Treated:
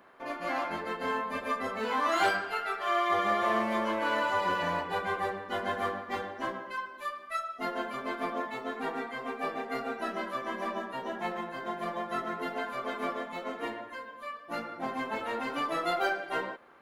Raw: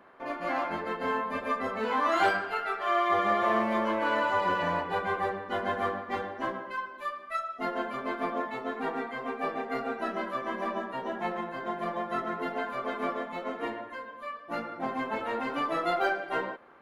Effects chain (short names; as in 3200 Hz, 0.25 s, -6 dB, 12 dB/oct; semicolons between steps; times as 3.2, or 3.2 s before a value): high shelf 3700 Hz +9.5 dB; gain -2.5 dB